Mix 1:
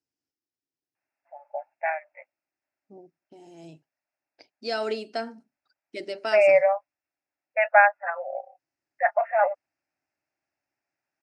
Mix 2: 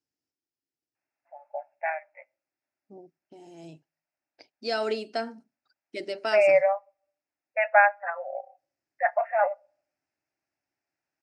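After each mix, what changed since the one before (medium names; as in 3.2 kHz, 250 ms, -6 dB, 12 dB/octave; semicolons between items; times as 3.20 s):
first voice -5.5 dB; reverb: on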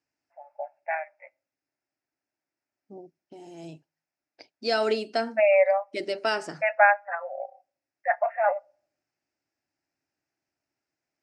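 first voice: entry -0.95 s; second voice +3.5 dB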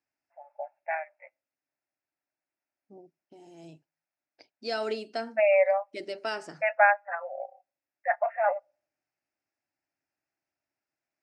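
first voice: send -9.0 dB; second voice -6.5 dB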